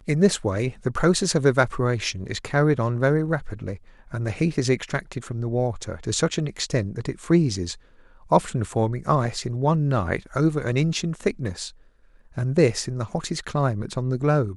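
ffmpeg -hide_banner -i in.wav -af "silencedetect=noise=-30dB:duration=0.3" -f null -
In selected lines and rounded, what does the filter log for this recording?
silence_start: 3.74
silence_end: 4.13 | silence_duration: 0.39
silence_start: 7.74
silence_end: 8.31 | silence_duration: 0.58
silence_start: 11.68
silence_end: 12.37 | silence_duration: 0.69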